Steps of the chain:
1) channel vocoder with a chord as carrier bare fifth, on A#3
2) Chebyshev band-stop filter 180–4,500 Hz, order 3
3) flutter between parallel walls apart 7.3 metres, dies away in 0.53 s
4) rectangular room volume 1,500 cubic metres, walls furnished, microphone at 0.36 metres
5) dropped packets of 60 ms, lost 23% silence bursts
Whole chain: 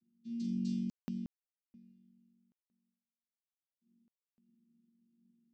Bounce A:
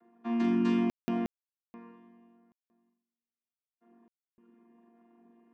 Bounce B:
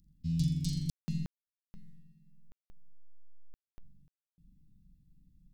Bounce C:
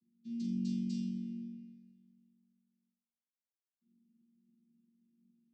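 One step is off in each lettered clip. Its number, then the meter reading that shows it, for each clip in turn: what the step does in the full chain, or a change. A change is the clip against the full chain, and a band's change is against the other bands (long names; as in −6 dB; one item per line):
2, 500 Hz band +15.5 dB
1, 500 Hz band −15.5 dB
5, change in momentary loudness spread +5 LU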